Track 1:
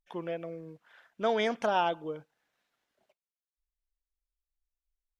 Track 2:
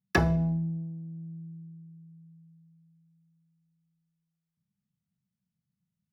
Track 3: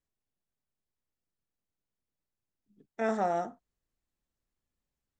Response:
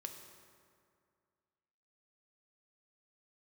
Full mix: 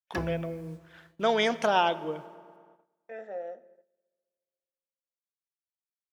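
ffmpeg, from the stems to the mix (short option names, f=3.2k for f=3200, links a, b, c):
-filter_complex "[0:a]agate=range=-33dB:threshold=-57dB:ratio=3:detection=peak,highshelf=f=2.3k:g=5.5,volume=0dB,asplit=3[a][b][c];[b]volume=-4dB[d];[1:a]acrusher=bits=8:mix=0:aa=0.000001,volume=-12.5dB,asplit=2[e][f];[f]volume=-4.5dB[g];[2:a]asplit=3[h][i][j];[h]bandpass=f=530:t=q:w=8,volume=0dB[k];[i]bandpass=f=1.84k:t=q:w=8,volume=-6dB[l];[j]bandpass=f=2.48k:t=q:w=8,volume=-9dB[m];[k][l][m]amix=inputs=3:normalize=0,adelay=100,volume=-1.5dB,asplit=2[n][o];[o]volume=-6dB[p];[c]apad=whole_len=269895[q];[e][q]sidechaingate=range=-33dB:threshold=-48dB:ratio=16:detection=peak[r];[3:a]atrim=start_sample=2205[s];[d][g][p]amix=inputs=3:normalize=0[t];[t][s]afir=irnorm=-1:irlink=0[u];[a][r][n][u]amix=inputs=4:normalize=0,agate=range=-15dB:threshold=-59dB:ratio=16:detection=peak"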